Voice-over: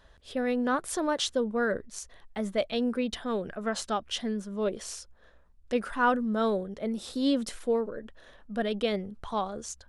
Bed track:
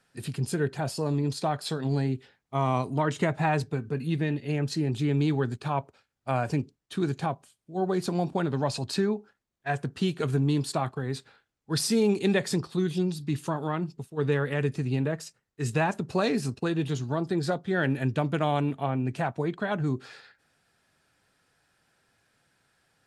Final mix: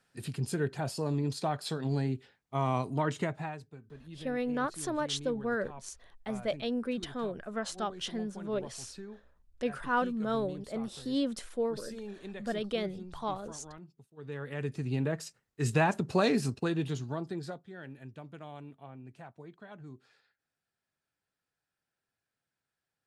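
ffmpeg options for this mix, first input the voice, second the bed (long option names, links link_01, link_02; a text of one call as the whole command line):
ffmpeg -i stem1.wav -i stem2.wav -filter_complex "[0:a]adelay=3900,volume=-4.5dB[link_01];[1:a]volume=15dB,afade=type=out:start_time=3.09:duration=0.49:silence=0.16788,afade=type=in:start_time=14.22:duration=1.2:silence=0.112202,afade=type=out:start_time=16.29:duration=1.43:silence=0.105925[link_02];[link_01][link_02]amix=inputs=2:normalize=0" out.wav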